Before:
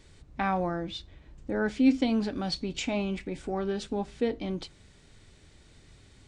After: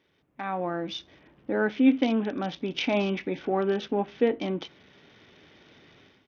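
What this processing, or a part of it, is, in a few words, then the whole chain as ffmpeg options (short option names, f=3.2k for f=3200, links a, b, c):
Bluetooth headset: -af "highpass=220,dynaudnorm=f=430:g=3:m=15dB,aresample=8000,aresample=44100,volume=-8dB" -ar 48000 -c:a sbc -b:a 64k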